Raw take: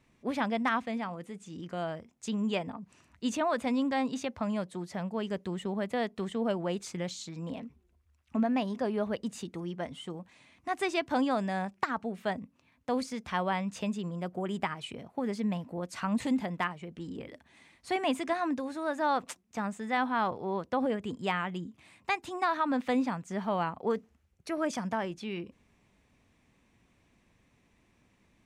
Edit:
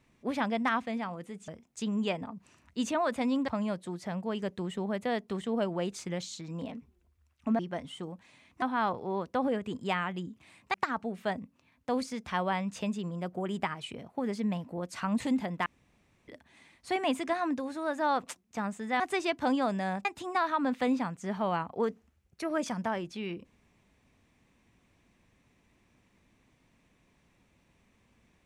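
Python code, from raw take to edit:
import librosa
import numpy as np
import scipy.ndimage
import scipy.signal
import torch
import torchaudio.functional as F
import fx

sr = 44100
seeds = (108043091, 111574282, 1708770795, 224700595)

y = fx.edit(x, sr, fx.cut(start_s=1.48, length_s=0.46),
    fx.cut(start_s=3.94, length_s=0.42),
    fx.cut(start_s=8.47, length_s=1.19),
    fx.swap(start_s=10.69, length_s=1.05, other_s=20.0, other_length_s=2.12),
    fx.room_tone_fill(start_s=16.66, length_s=0.62), tone=tone)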